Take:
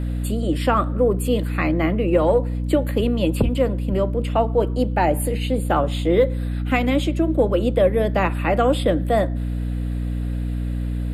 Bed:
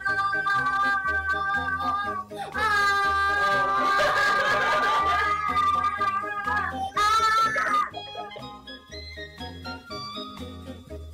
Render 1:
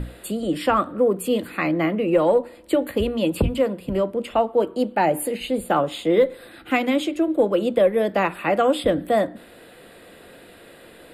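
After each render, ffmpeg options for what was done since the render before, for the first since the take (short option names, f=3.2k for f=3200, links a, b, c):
-af "bandreject=f=60:t=h:w=6,bandreject=f=120:t=h:w=6,bandreject=f=180:t=h:w=6,bandreject=f=240:t=h:w=6,bandreject=f=300:t=h:w=6"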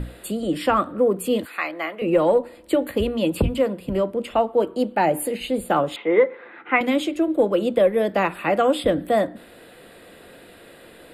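-filter_complex "[0:a]asettb=1/sr,asplit=3[a][b][c];[a]atrim=end=1.454[d];[b]atrim=start=1.45:end=2.02,asetpts=PTS-STARTPTS,afade=t=in:d=0.004:c=qsin,afade=t=out:st=0.566:d=0.004:c=qsin,highpass=710[e];[c]atrim=start=2.016[f];[d][e]acrossfade=d=0.004:c1=hsin:c2=qsin[g];[g][f]acrossfade=d=0.004:c1=qsin:c2=hsin,asettb=1/sr,asplit=3[h][i][j];[h]atrim=end=5.964[k];[i]atrim=start=5.96:end=6.81,asetpts=PTS-STARTPTS,afade=t=in:d=0.004:c=qsin,afade=t=out:st=0.846:d=0.004:c=qsin,highpass=280,equalizer=f=290:t=q:w=4:g=-4,equalizer=f=420:t=q:w=4:g=4,equalizer=f=630:t=q:w=4:g=-4,equalizer=f=930:t=q:w=4:g=9,equalizer=f=1.3k:t=q:w=4:g=4,equalizer=f=2.1k:t=q:w=4:g=7,lowpass=f=2.5k:w=0.5412,lowpass=f=2.5k:w=1.3066[l];[j]atrim=start=6.806[m];[k][l]acrossfade=d=0.004:c1=hsin:c2=qsin[n];[n][m]acrossfade=d=0.004:c1=qsin:c2=hsin"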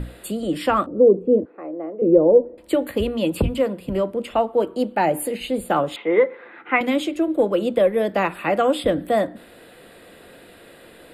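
-filter_complex "[0:a]asettb=1/sr,asplit=3[a][b][c];[a]atrim=end=0.864[d];[b]atrim=start=0.86:end=2.58,asetpts=PTS-STARTPTS,afade=t=in:d=0.004:c=qsin,afade=t=out:st=1.716:d=0.004:c=qsin,lowpass=f=440:t=q:w=2.3[e];[c]atrim=start=2.576[f];[d][e]acrossfade=d=0.004:c1=hsin:c2=qsin[g];[g][f]acrossfade=d=0.004:c1=qsin:c2=hsin"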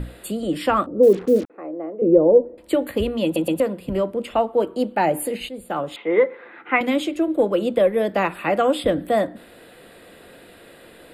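-filter_complex "[0:a]asettb=1/sr,asplit=3[a][b][c];[a]atrim=end=1.034[d];[b]atrim=start=1.03:end=1.5,asetpts=PTS-STARTPTS,afade=t=in:d=0.004:c=qsin,afade=t=out:st=0.466:d=0.004:c=qsin,acrusher=bits=5:mix=0:aa=0.5[e];[c]atrim=start=1.496[f];[d][e]acrossfade=d=0.004:c1=hsin:c2=qsin[g];[g][f]acrossfade=d=0.004:c1=qsin:c2=hsin,asplit=5[h][i][j][k][l];[h]atrim=end=3.362[m];[i]atrim=start=3.238:end=3.362[n];[j]atrim=start=3.238:end=3.362[o];[k]atrim=start=3.598:end=5.49,asetpts=PTS-STARTPTS,afade=t=out:st=1.888:d=0.004:c=hsin:silence=0.237137[p];[l]atrim=start=5.49,asetpts=PTS-STARTPTS,afade=t=in:d=0.74:silence=0.237137[q];[m][n]acrossfade=d=0.004:c1=hsin:c2=hsin[r];[r][o]acrossfade=d=0.004:c1=hsin:c2=hsin[s];[p][q]concat=n=2:v=0:a=1[t];[s][t]acrossfade=d=0.004:c1=hsin:c2=hsin"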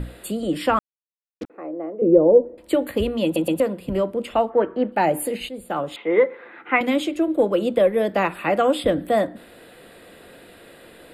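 -filter_complex "[0:a]asplit=3[a][b][c];[a]afade=t=out:st=4.49:d=0.02[d];[b]lowpass=f=1.8k:t=q:w=4.5,afade=t=in:st=4.49:d=0.02,afade=t=out:st=4.91:d=0.02[e];[c]afade=t=in:st=4.91:d=0.02[f];[d][e][f]amix=inputs=3:normalize=0,asplit=3[g][h][i];[g]atrim=end=0.79,asetpts=PTS-STARTPTS,afade=t=out:st=0.786:d=0.004:c=hsin[j];[h]atrim=start=0.79:end=1.41,asetpts=PTS-STARTPTS,volume=0[k];[i]atrim=start=1.41,asetpts=PTS-STARTPTS,afade=t=in:d=0.004:c=hsin[l];[j][k][l]concat=n=3:v=0:a=1"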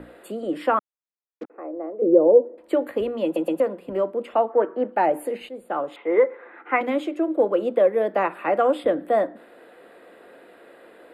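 -filter_complex "[0:a]acrossover=split=260 2000:gain=0.0794 1 0.2[a][b][c];[a][b][c]amix=inputs=3:normalize=0"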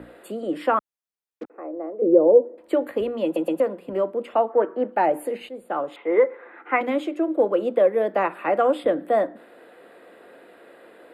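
-af "highpass=48"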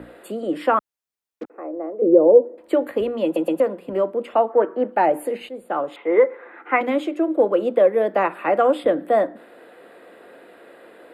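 -af "volume=2.5dB,alimiter=limit=-3dB:level=0:latency=1"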